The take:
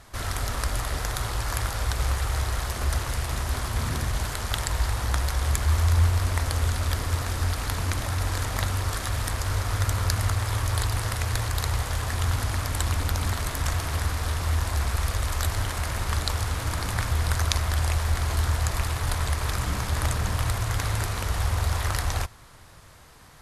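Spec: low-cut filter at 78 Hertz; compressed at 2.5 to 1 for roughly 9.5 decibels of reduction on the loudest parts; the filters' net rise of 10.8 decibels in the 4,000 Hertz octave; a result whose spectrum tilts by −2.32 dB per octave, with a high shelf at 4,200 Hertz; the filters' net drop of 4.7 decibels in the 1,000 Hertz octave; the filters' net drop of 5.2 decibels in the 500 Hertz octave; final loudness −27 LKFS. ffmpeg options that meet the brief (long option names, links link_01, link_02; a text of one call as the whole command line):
ffmpeg -i in.wav -af "highpass=78,equalizer=frequency=500:width_type=o:gain=-5,equalizer=frequency=1000:width_type=o:gain=-6,equalizer=frequency=4000:width_type=o:gain=9,highshelf=frequency=4200:gain=7.5,acompressor=threshold=-28dB:ratio=2.5,volume=2dB" out.wav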